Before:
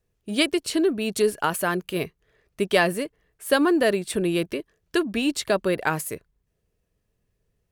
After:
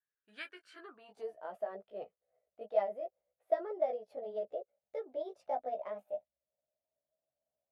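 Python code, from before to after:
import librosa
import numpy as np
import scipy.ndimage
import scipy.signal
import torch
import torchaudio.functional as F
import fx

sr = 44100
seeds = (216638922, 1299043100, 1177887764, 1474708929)

y = fx.pitch_glide(x, sr, semitones=6.5, runs='starting unshifted')
y = fx.chorus_voices(y, sr, voices=6, hz=0.4, base_ms=15, depth_ms=1.3, mix_pct=40)
y = fx.filter_sweep_bandpass(y, sr, from_hz=1600.0, to_hz=620.0, start_s=0.68, end_s=1.4, q=7.9)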